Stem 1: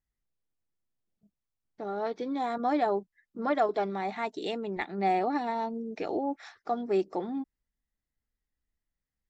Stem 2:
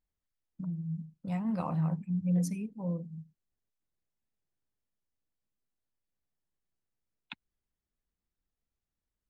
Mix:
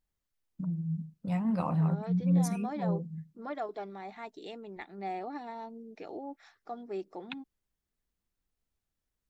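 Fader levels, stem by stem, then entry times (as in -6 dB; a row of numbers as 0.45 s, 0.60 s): -10.5 dB, +2.5 dB; 0.00 s, 0.00 s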